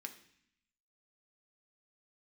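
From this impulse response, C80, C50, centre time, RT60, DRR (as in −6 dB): 15.0 dB, 12.0 dB, 9 ms, 0.65 s, 4.5 dB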